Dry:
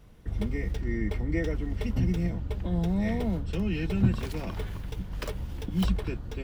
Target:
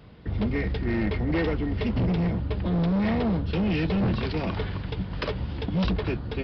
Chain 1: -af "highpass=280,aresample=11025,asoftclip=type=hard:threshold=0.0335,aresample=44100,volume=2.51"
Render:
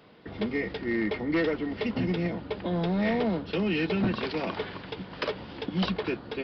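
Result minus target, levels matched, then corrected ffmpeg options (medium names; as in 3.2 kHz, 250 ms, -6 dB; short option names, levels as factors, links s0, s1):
125 Hz band -5.5 dB
-af "highpass=74,aresample=11025,asoftclip=type=hard:threshold=0.0335,aresample=44100,volume=2.51"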